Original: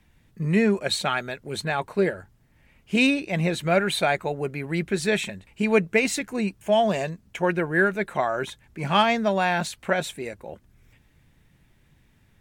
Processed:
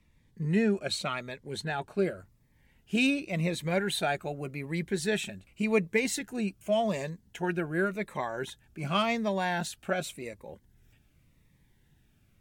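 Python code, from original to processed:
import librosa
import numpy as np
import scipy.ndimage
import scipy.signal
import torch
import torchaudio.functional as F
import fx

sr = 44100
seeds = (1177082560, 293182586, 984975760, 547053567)

y = fx.high_shelf(x, sr, hz=12000.0, db=fx.steps((0.0, -7.5), (1.98, 4.5)))
y = fx.notch_cascade(y, sr, direction='falling', hz=0.88)
y = F.gain(torch.from_numpy(y), -5.0).numpy()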